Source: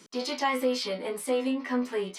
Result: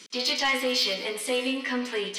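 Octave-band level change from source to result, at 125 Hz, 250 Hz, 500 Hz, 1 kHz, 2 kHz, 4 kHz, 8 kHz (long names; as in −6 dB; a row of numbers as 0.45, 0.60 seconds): can't be measured, −2.0 dB, −0.5 dB, −1.5 dB, +7.5 dB, +10.0 dB, +6.0 dB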